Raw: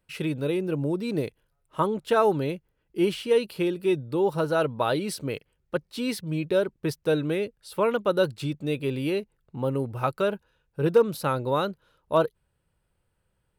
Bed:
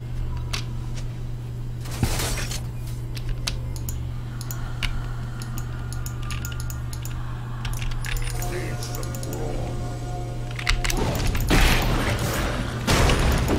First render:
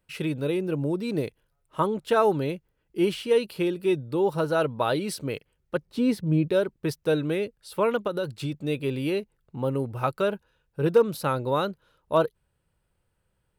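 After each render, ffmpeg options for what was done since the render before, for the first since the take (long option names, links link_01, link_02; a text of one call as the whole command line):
ffmpeg -i in.wav -filter_complex "[0:a]asettb=1/sr,asplit=3[link_01][link_02][link_03];[link_01]atrim=end=5.864[link_04];[link_02]atrim=start=5.86:end=6.48,asetpts=PTS-STARTPTS,afade=type=in:duration=0.004:curve=qsin,afade=type=out:start_time=0.616:duration=0.004:curve=qsin,tiltshelf=frequency=1100:gain=7[link_05];[link_03]atrim=start=6.476[link_06];[link_04][link_05]acrossfade=duration=0.004:curve1=hsin:curve2=qsin[link_07];[link_07][link_06]acrossfade=duration=0.004:curve1=qsin:curve2=hsin,asettb=1/sr,asplit=3[link_08][link_09][link_10];[link_08]atrim=end=8.074[link_11];[link_09]atrim=start=8.07:end=8.53,asetpts=PTS-STARTPTS,afade=type=in:duration=0.004:curve=qsin,afade=type=out:start_time=0.456:duration=0.004:curve=qsin,acompressor=threshold=-24dB:ratio=6:attack=3.2:release=140:knee=1:detection=peak[link_12];[link_10]atrim=start=8.526[link_13];[link_11][link_12]acrossfade=duration=0.004:curve1=hsin:curve2=qsin[link_14];[link_14][link_13]acrossfade=duration=0.004:curve1=qsin:curve2=hsin" out.wav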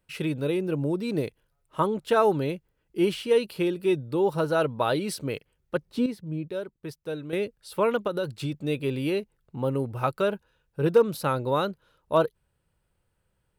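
ffmpeg -i in.wav -filter_complex "[0:a]asplit=3[link_01][link_02][link_03];[link_01]atrim=end=6.062[link_04];[link_02]atrim=start=6.058:end=7.332,asetpts=PTS-STARTPTS,volume=-9.5dB[link_05];[link_03]atrim=start=7.328[link_06];[link_04][link_05]acrossfade=duration=0.004:curve1=hsin:curve2=hsin[link_07];[link_07][link_06]acrossfade=duration=0.004:curve1=hsin:curve2=hsin" out.wav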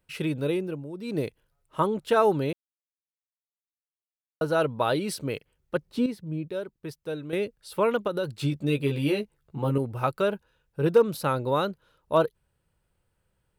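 ffmpeg -i in.wav -filter_complex "[0:a]asettb=1/sr,asplit=3[link_01][link_02][link_03];[link_01]atrim=end=8.374[link_04];[link_02]atrim=start=8.37:end=9.78,asetpts=PTS-STARTPTS,afade=type=in:duration=0.004:curve=qsin,afade=type=out:start_time=1.406:duration=0.004:curve=qsin,asplit=2[link_05][link_06];[link_06]adelay=14,volume=-2.5dB[link_07];[link_05][link_07]amix=inputs=2:normalize=0,atrim=end_sample=62181[link_08];[link_03]atrim=start=9.776[link_09];[link_04][link_08]acrossfade=duration=0.004:curve1=hsin:curve2=qsin[link_10];[link_10][link_09]acrossfade=duration=0.004:curve1=qsin:curve2=hsin,asplit=5[link_11][link_12][link_13][link_14][link_15];[link_11]atrim=end=0.84,asetpts=PTS-STARTPTS,afade=type=out:start_time=0.53:duration=0.31:silence=0.251189[link_16];[link_12]atrim=start=0.84:end=0.92,asetpts=PTS-STARTPTS,volume=-12dB[link_17];[link_13]atrim=start=0.92:end=2.53,asetpts=PTS-STARTPTS,afade=type=in:duration=0.31:silence=0.251189,afade=type=out:start_time=1.606:duration=0.004:curve=hsin[link_18];[link_14]atrim=start=2.53:end=4.41,asetpts=PTS-STARTPTS,volume=0[link_19];[link_15]atrim=start=4.41,asetpts=PTS-STARTPTS,afade=type=in:duration=0.004:curve=hsin[link_20];[link_16][link_17][link_18][link_19][link_20]concat=n=5:v=0:a=1" out.wav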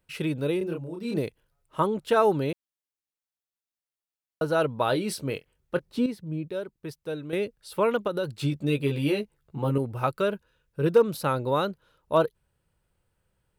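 ffmpeg -i in.wav -filter_complex "[0:a]asettb=1/sr,asplit=3[link_01][link_02][link_03];[link_01]atrim=end=0.584[link_04];[link_02]atrim=start=0.58:end=1.19,asetpts=PTS-STARTPTS,afade=type=in:duration=0.004:curve=qsin,afade=type=out:start_time=0.606:duration=0.004:curve=qsin,asplit=2[link_05][link_06];[link_06]adelay=30,volume=-2.5dB[link_07];[link_05][link_07]amix=inputs=2:normalize=0,atrim=end_sample=26901[link_08];[link_03]atrim=start=1.186[link_09];[link_04][link_08]acrossfade=duration=0.004:curve1=hsin:curve2=qsin[link_10];[link_10][link_09]acrossfade=duration=0.004:curve1=qsin:curve2=hsin,asettb=1/sr,asplit=3[link_11][link_12][link_13];[link_11]atrim=end=4.864[link_14];[link_12]atrim=start=4.86:end=5.85,asetpts=PTS-STARTPTS,afade=type=in:duration=0.004:curve=qsin,afade=type=out:start_time=0.986:duration=0.004:curve=qsin,asplit=2[link_15][link_16];[link_16]adelay=23,volume=-12dB[link_17];[link_15][link_17]amix=inputs=2:normalize=0,atrim=end_sample=43659[link_18];[link_13]atrim=start=5.846[link_19];[link_14][link_18]acrossfade=duration=0.004:curve1=hsin:curve2=qsin[link_20];[link_20][link_19]acrossfade=duration=0.004:curve1=qsin:curve2=hsin,asettb=1/sr,asplit=3[link_21][link_22][link_23];[link_21]atrim=end=10.114[link_24];[link_22]atrim=start=10.11:end=10.96,asetpts=PTS-STARTPTS,afade=type=in:duration=0.004:curve=qsin,afade=type=out:start_time=0.846:duration=0.004:curve=qsin,equalizer=frequency=790:width_type=o:width=0.28:gain=-9.5[link_25];[link_23]atrim=start=10.956[link_26];[link_24][link_25]acrossfade=duration=0.004:curve1=hsin:curve2=qsin[link_27];[link_27][link_26]acrossfade=duration=0.004:curve1=qsin:curve2=hsin" out.wav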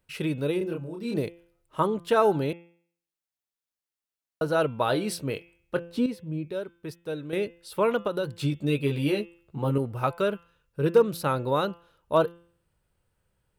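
ffmpeg -i in.wav -af "bandreject=frequency=170.7:width_type=h:width=4,bandreject=frequency=341.4:width_type=h:width=4,bandreject=frequency=512.1:width_type=h:width=4,bandreject=frequency=682.8:width_type=h:width=4,bandreject=frequency=853.5:width_type=h:width=4,bandreject=frequency=1024.2:width_type=h:width=4,bandreject=frequency=1194.9:width_type=h:width=4,bandreject=frequency=1365.6:width_type=h:width=4,bandreject=frequency=1536.3:width_type=h:width=4,bandreject=frequency=1707:width_type=h:width=4,bandreject=frequency=1877.7:width_type=h:width=4,bandreject=frequency=2048.4:width_type=h:width=4,bandreject=frequency=2219.1:width_type=h:width=4,bandreject=frequency=2389.8:width_type=h:width=4,bandreject=frequency=2560.5:width_type=h:width=4,bandreject=frequency=2731.2:width_type=h:width=4,bandreject=frequency=2901.9:width_type=h:width=4,bandreject=frequency=3072.6:width_type=h:width=4,bandreject=frequency=3243.3:width_type=h:width=4,bandreject=frequency=3414:width_type=h:width=4,bandreject=frequency=3584.7:width_type=h:width=4" out.wav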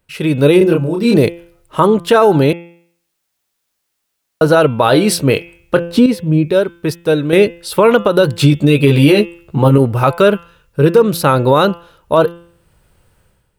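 ffmpeg -i in.wav -af "dynaudnorm=framelen=100:gausssize=7:maxgain=12dB,alimiter=level_in=8dB:limit=-1dB:release=50:level=0:latency=1" out.wav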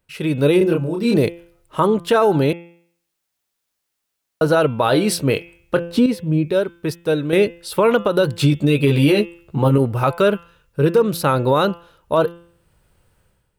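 ffmpeg -i in.wav -af "volume=-5.5dB" out.wav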